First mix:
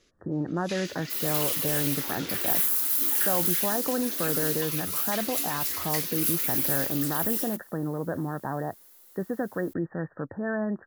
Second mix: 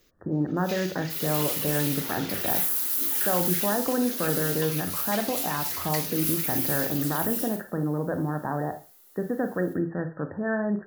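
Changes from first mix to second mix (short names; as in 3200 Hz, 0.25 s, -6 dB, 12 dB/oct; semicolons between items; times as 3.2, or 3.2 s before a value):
first sound: remove steep low-pass 11000 Hz 96 dB/oct; second sound -6.0 dB; reverb: on, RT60 0.30 s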